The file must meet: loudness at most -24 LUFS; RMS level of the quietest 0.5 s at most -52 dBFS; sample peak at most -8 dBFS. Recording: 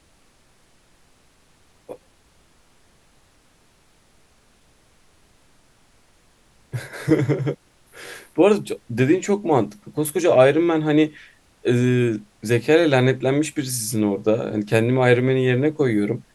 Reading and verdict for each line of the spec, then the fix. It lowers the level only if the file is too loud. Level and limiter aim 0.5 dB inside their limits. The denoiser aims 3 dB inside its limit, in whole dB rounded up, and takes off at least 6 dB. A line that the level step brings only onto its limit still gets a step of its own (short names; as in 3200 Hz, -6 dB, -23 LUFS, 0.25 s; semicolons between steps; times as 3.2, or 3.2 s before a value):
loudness -20.0 LUFS: fail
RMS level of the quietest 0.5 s -57 dBFS: OK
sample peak -2.0 dBFS: fail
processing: gain -4.5 dB; limiter -8.5 dBFS